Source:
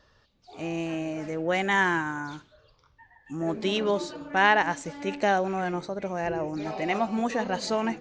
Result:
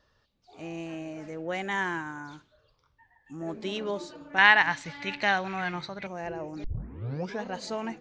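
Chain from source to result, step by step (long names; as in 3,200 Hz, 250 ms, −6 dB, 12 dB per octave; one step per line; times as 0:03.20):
0:04.38–0:06.07: octave-band graphic EQ 125/250/500/1,000/2,000/4,000/8,000 Hz +11/−3/−5/+5/+10/+12/−5 dB
0:06.64: tape start 0.79 s
level −6.5 dB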